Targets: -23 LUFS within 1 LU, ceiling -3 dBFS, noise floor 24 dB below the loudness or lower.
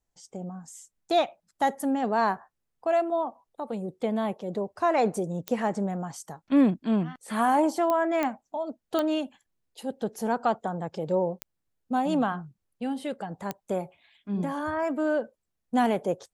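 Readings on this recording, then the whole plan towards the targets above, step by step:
clicks 6; loudness -28.0 LUFS; peak -11.0 dBFS; loudness target -23.0 LUFS
-> de-click; gain +5 dB

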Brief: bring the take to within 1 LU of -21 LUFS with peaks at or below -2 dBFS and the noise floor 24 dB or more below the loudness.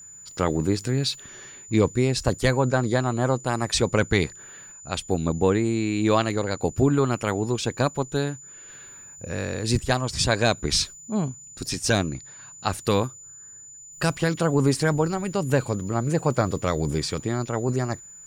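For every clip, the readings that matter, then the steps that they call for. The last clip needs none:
steady tone 7000 Hz; tone level -42 dBFS; loudness -24.5 LUFS; peak -8.5 dBFS; loudness target -21.0 LUFS
-> notch 7000 Hz, Q 30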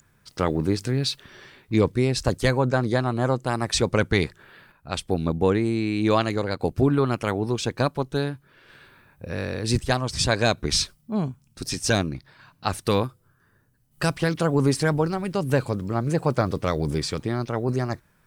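steady tone none; loudness -24.5 LUFS; peak -8.5 dBFS; loudness target -21.0 LUFS
-> gain +3.5 dB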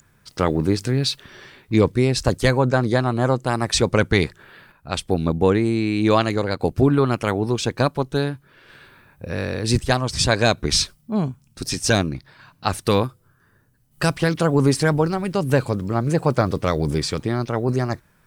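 loudness -21.0 LUFS; peak -5.0 dBFS; noise floor -59 dBFS

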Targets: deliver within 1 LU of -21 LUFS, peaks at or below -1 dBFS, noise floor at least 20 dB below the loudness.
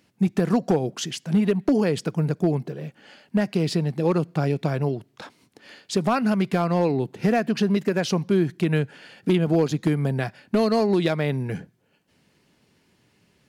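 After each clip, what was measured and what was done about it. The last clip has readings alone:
clipped 0.4%; flat tops at -12.5 dBFS; loudness -23.5 LUFS; peak -12.5 dBFS; loudness target -21.0 LUFS
-> clip repair -12.5 dBFS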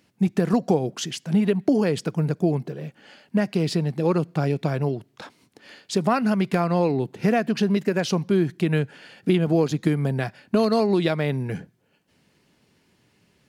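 clipped 0.0%; loudness -23.5 LUFS; peak -7.0 dBFS; loudness target -21.0 LUFS
-> gain +2.5 dB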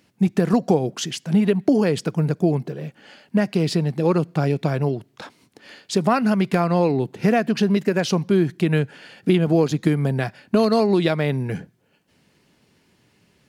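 loudness -21.0 LUFS; peak -4.5 dBFS; noise floor -63 dBFS

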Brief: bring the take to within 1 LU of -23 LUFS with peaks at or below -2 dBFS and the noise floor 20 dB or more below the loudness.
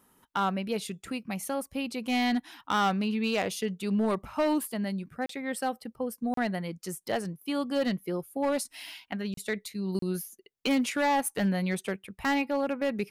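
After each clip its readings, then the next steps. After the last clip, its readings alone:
clipped 1.2%; flat tops at -21.0 dBFS; dropouts 4; longest dropout 33 ms; loudness -30.5 LUFS; peak -21.0 dBFS; loudness target -23.0 LUFS
-> clip repair -21 dBFS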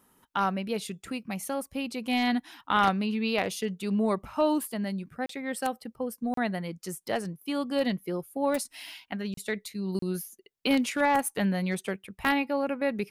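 clipped 0.0%; dropouts 4; longest dropout 33 ms
-> interpolate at 5.26/6.34/9.34/9.99, 33 ms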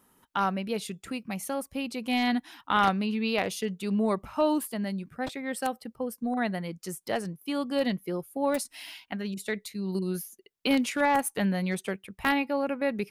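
dropouts 0; loudness -30.0 LUFS; peak -12.0 dBFS; loudness target -23.0 LUFS
-> gain +7 dB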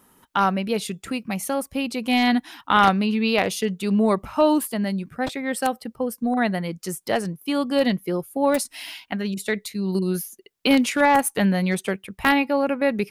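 loudness -23.0 LUFS; peak -5.0 dBFS; noise floor -63 dBFS

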